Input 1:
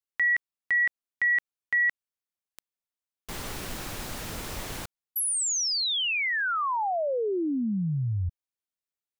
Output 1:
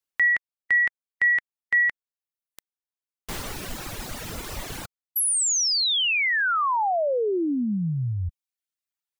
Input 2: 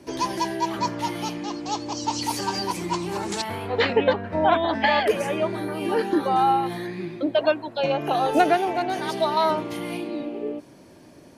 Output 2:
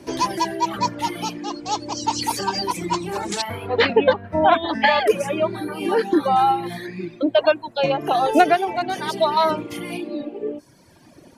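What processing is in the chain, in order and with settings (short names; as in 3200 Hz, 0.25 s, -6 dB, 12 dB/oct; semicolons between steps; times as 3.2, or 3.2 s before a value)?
reverb removal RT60 1.4 s; gain +4.5 dB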